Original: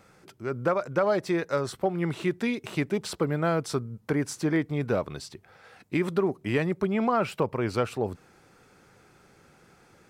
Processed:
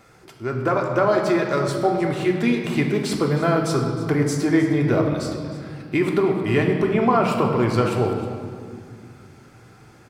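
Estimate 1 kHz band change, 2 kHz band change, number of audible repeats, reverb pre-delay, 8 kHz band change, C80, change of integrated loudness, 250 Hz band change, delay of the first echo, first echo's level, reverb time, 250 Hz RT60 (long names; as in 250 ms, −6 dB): +7.5 dB, +6.5 dB, 1, 3 ms, +5.5 dB, 5.5 dB, +7.0 dB, +8.0 dB, 312 ms, −15.0 dB, 2.1 s, 3.2 s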